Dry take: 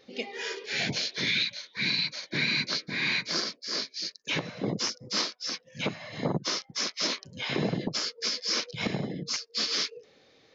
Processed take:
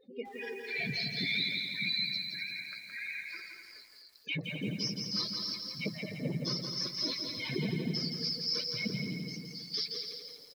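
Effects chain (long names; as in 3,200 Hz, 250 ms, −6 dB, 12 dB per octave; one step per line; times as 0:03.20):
expanding power law on the bin magnitudes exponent 2.9
0:02.17–0:04.16: resonant band-pass 1,600 Hz, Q 2.7
0:09.24–0:09.74: downward compressor 8 to 1, threshold −39 dBFS, peak gain reduction 13 dB
repeating echo 254 ms, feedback 27%, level −9.5 dB
feedback echo at a low word length 169 ms, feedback 55%, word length 9 bits, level −4.5 dB
level −5 dB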